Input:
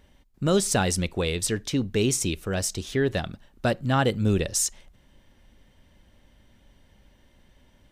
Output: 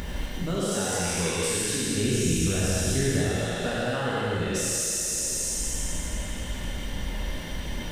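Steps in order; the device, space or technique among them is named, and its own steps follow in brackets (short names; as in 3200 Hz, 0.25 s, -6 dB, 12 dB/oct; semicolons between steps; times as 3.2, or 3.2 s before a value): spectral trails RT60 1.66 s; upward and downward compression (upward compressor, threshold -22 dBFS; compressor 5:1, threshold -32 dBFS, peak gain reduction 16.5 dB); 1.97–3.3 tone controls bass +10 dB, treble -2 dB; thin delay 0.255 s, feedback 52%, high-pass 1500 Hz, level -6.5 dB; non-linear reverb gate 0.26 s flat, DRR -5 dB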